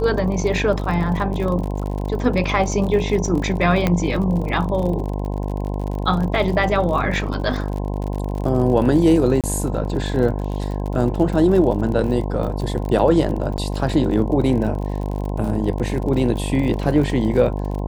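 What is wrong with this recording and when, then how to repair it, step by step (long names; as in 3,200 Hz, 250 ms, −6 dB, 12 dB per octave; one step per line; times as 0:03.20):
mains buzz 50 Hz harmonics 21 −24 dBFS
surface crackle 45 per second −27 dBFS
0:03.87: click −5 dBFS
0:09.41–0:09.44: drop-out 27 ms
0:13.57–0:13.58: drop-out 9.2 ms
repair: click removal
hum removal 50 Hz, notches 21
repair the gap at 0:09.41, 27 ms
repair the gap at 0:13.57, 9.2 ms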